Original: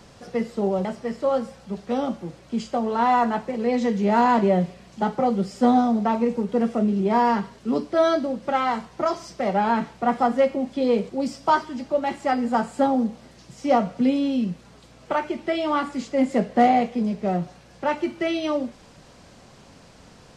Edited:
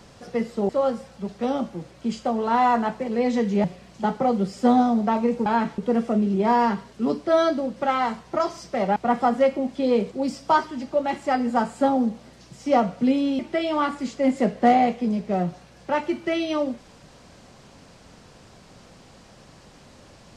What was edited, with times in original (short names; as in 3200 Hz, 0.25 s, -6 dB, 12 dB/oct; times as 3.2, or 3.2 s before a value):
0.69–1.17 cut
4.12–4.62 cut
9.62–9.94 move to 6.44
14.37–15.33 cut